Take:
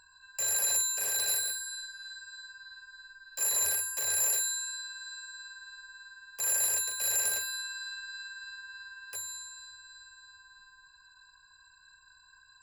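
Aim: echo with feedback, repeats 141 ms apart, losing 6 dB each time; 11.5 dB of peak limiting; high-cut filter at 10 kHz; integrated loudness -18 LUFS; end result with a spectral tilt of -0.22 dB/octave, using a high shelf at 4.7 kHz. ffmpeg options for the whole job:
-af "lowpass=10000,highshelf=f=4700:g=-8,alimiter=level_in=3.98:limit=0.0631:level=0:latency=1,volume=0.251,aecho=1:1:141|282|423|564|705|846:0.501|0.251|0.125|0.0626|0.0313|0.0157,volume=15.8"

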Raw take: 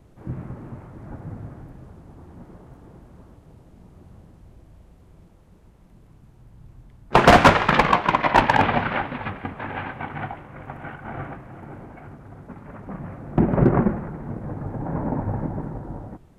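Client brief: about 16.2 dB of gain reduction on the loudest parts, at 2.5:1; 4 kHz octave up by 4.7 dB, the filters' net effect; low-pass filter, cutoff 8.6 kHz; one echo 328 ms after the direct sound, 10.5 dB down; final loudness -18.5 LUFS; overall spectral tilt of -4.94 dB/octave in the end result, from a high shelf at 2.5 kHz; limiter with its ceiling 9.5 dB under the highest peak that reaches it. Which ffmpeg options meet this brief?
-af "lowpass=8600,highshelf=f=2500:g=3.5,equalizer=f=4000:t=o:g=3.5,acompressor=threshold=0.0224:ratio=2.5,alimiter=limit=0.0794:level=0:latency=1,aecho=1:1:328:0.299,volume=7.5"

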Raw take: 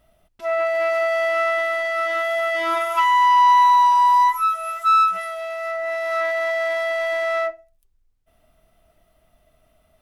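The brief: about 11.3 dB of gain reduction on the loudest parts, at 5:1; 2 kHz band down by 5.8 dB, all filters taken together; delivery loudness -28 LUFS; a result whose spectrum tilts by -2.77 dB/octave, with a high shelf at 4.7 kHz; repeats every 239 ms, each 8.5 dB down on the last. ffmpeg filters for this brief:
-af "equalizer=f=2000:t=o:g=-5,highshelf=f=4700:g=-6,acompressor=threshold=0.0447:ratio=5,aecho=1:1:239|478|717|956:0.376|0.143|0.0543|0.0206"

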